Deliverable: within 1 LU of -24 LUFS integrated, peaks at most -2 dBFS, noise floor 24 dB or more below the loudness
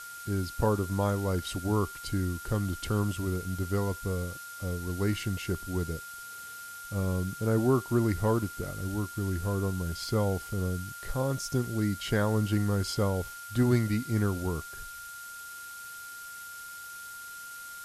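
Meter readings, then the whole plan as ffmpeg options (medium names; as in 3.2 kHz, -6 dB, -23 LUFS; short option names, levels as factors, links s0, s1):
steady tone 1.4 kHz; tone level -42 dBFS; noise floor -44 dBFS; noise floor target -55 dBFS; loudness -30.5 LUFS; peak level -11.5 dBFS; loudness target -24.0 LUFS
-> -af "bandreject=f=1400:w=30"
-af "afftdn=nr=11:nf=-44"
-af "volume=2.11"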